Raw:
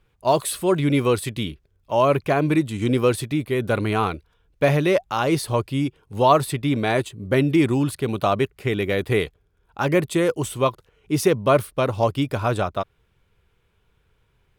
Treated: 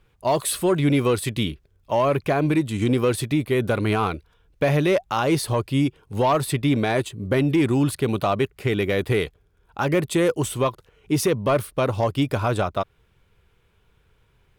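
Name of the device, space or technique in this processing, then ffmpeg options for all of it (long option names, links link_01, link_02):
soft clipper into limiter: -af "asoftclip=type=tanh:threshold=-9.5dB,alimiter=limit=-15.5dB:level=0:latency=1:release=203,volume=3dB"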